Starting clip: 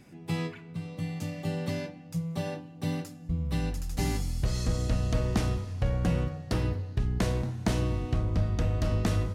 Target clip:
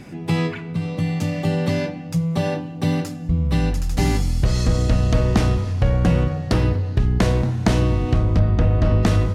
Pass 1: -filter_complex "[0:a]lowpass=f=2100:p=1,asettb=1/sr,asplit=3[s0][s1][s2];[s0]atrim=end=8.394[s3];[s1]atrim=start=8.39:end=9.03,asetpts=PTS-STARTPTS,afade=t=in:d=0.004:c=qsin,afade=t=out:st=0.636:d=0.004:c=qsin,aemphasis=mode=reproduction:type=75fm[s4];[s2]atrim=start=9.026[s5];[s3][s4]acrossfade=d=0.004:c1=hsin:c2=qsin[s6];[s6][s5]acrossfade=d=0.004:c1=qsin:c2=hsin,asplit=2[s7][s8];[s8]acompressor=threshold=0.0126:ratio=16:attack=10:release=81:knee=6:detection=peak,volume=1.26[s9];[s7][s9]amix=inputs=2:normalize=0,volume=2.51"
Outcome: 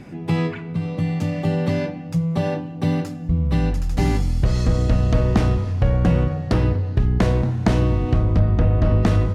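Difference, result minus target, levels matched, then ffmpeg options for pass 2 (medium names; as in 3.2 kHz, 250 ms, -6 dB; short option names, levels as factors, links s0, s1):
4 kHz band -4.5 dB
-filter_complex "[0:a]lowpass=f=5400:p=1,asettb=1/sr,asplit=3[s0][s1][s2];[s0]atrim=end=8.394[s3];[s1]atrim=start=8.39:end=9.03,asetpts=PTS-STARTPTS,afade=t=in:d=0.004:c=qsin,afade=t=out:st=0.636:d=0.004:c=qsin,aemphasis=mode=reproduction:type=75fm[s4];[s2]atrim=start=9.026[s5];[s3][s4]acrossfade=d=0.004:c1=hsin:c2=qsin[s6];[s6][s5]acrossfade=d=0.004:c1=qsin:c2=hsin,asplit=2[s7][s8];[s8]acompressor=threshold=0.0126:ratio=16:attack=10:release=81:knee=6:detection=peak,volume=1.26[s9];[s7][s9]amix=inputs=2:normalize=0,volume=2.51"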